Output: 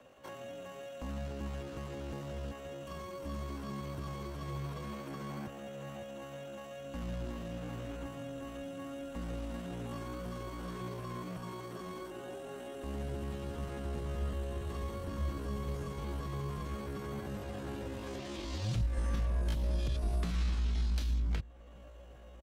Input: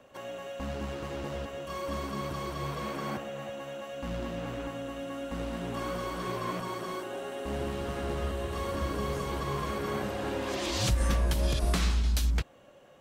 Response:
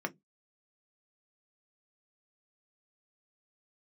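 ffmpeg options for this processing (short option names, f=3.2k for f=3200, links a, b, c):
-filter_complex "[0:a]acrossover=split=160|320|5400[a][b][c][d];[a]acompressor=threshold=-28dB:ratio=4[e];[b]acompressor=threshold=-45dB:ratio=4[f];[c]acompressor=threshold=-44dB:ratio=4[g];[d]acompressor=threshold=-60dB:ratio=4[h];[e][f][g][h]amix=inputs=4:normalize=0,asplit=2[i][j];[j]adelay=1516,volume=-22dB,highshelf=f=4k:g=-34.1[k];[i][k]amix=inputs=2:normalize=0,atempo=0.58,volume=-1.5dB"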